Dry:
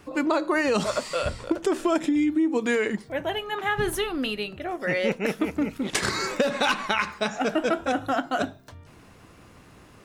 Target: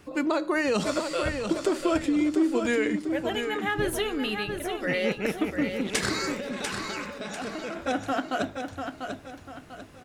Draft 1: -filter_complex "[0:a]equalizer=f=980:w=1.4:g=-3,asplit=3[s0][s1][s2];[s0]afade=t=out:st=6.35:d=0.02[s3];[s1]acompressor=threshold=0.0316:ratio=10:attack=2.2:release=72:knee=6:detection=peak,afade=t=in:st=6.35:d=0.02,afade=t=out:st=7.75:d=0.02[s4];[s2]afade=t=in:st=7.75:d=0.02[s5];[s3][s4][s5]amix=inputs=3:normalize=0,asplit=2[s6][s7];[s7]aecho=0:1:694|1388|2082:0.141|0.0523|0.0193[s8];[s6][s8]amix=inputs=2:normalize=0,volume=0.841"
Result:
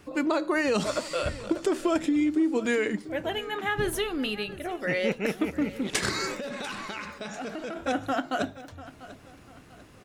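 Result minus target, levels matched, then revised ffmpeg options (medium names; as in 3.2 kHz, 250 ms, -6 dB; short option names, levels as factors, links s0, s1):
echo-to-direct -10.5 dB
-filter_complex "[0:a]equalizer=f=980:w=1.4:g=-3,asplit=3[s0][s1][s2];[s0]afade=t=out:st=6.35:d=0.02[s3];[s1]acompressor=threshold=0.0316:ratio=10:attack=2.2:release=72:knee=6:detection=peak,afade=t=in:st=6.35:d=0.02,afade=t=out:st=7.75:d=0.02[s4];[s2]afade=t=in:st=7.75:d=0.02[s5];[s3][s4][s5]amix=inputs=3:normalize=0,asplit=2[s6][s7];[s7]aecho=0:1:694|1388|2082|2776:0.473|0.175|0.0648|0.024[s8];[s6][s8]amix=inputs=2:normalize=0,volume=0.841"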